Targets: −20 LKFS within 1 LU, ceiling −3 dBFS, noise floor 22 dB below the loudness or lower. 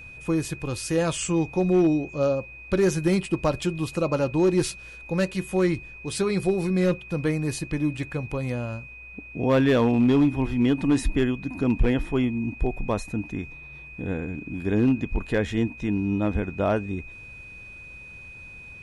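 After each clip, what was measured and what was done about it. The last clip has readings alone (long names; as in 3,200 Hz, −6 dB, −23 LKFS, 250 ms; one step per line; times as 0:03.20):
share of clipped samples 0.8%; peaks flattened at −14.0 dBFS; interfering tone 2,500 Hz; level of the tone −41 dBFS; integrated loudness −25.0 LKFS; sample peak −14.0 dBFS; target loudness −20.0 LKFS
→ clipped peaks rebuilt −14 dBFS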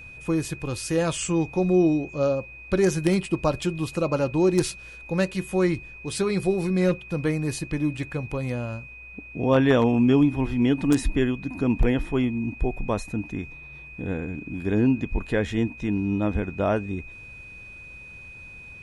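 share of clipped samples 0.0%; interfering tone 2,500 Hz; level of the tone −41 dBFS
→ notch filter 2,500 Hz, Q 30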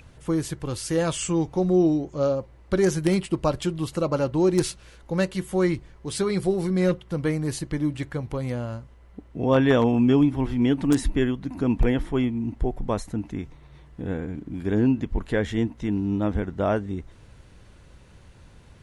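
interfering tone none found; integrated loudness −25.0 LKFS; sample peak −5.0 dBFS; target loudness −20.0 LKFS
→ level +5 dB
brickwall limiter −3 dBFS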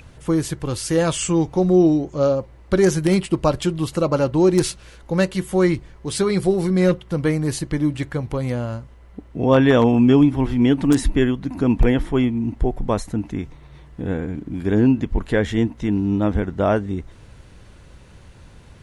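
integrated loudness −20.0 LKFS; sample peak −3.0 dBFS; background noise floor −46 dBFS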